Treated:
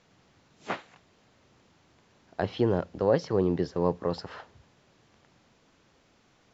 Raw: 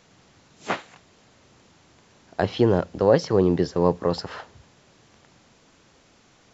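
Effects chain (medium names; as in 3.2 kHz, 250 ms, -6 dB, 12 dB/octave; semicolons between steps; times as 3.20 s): distance through air 64 m; trim -6 dB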